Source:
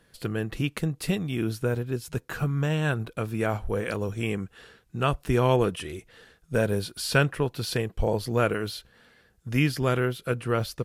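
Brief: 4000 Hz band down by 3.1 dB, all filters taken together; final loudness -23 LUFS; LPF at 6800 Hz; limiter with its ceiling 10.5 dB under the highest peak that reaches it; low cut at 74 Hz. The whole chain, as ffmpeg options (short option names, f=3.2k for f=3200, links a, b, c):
-af "highpass=74,lowpass=6.8k,equalizer=f=4k:t=o:g=-3.5,volume=8dB,alimiter=limit=-11dB:level=0:latency=1"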